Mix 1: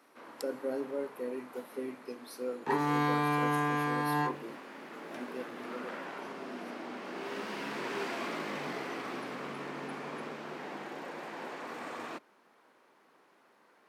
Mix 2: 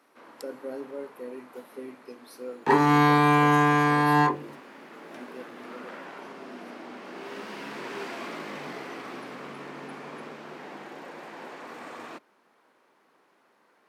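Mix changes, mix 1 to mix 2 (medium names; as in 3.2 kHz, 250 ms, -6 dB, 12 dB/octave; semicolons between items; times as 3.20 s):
second sound +11.0 dB; reverb: off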